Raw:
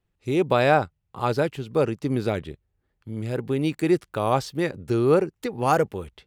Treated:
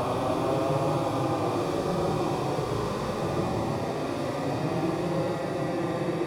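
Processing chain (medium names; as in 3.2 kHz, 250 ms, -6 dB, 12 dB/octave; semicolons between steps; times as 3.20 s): spectral blur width 342 ms; filtered feedback delay 251 ms, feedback 64%, level -5 dB; Paulstretch 18×, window 0.05 s, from 4.32 s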